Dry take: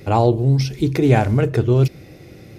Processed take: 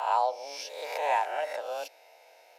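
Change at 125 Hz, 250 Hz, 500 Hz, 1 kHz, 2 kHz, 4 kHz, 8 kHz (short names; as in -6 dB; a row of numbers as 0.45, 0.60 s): under -40 dB, under -40 dB, -13.5 dB, -3.5 dB, -6.5 dB, -7.0 dB, n/a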